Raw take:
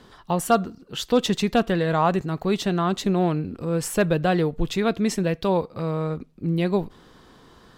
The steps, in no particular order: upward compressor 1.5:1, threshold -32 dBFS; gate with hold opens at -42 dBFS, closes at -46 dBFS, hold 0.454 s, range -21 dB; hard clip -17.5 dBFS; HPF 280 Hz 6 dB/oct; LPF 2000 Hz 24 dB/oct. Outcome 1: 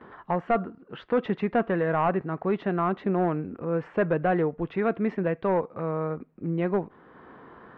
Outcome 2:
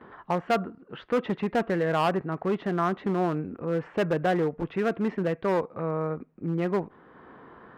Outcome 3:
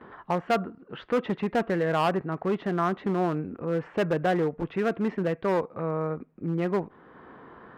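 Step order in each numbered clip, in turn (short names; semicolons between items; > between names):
gate with hold > HPF > upward compressor > hard clip > LPF; gate with hold > upward compressor > LPF > hard clip > HPF; gate with hold > LPF > hard clip > HPF > upward compressor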